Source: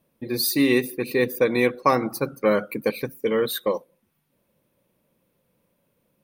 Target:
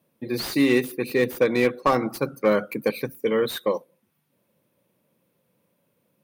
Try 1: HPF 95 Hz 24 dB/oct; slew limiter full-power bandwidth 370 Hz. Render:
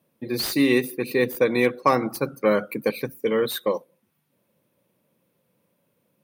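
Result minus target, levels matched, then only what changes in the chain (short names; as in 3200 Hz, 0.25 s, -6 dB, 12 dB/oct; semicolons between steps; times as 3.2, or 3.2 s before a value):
slew limiter: distortion -5 dB
change: slew limiter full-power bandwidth 181.5 Hz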